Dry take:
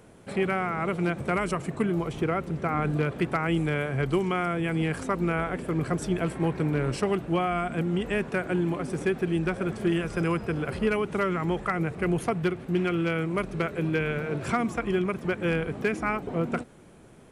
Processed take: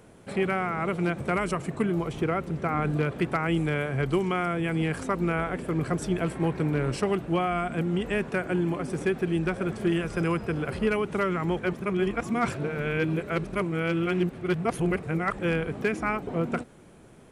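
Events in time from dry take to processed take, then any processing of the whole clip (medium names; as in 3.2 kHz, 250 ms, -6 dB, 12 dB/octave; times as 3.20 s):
8.36–8.88 s: band-stop 3.8 kHz
11.59–15.39 s: reverse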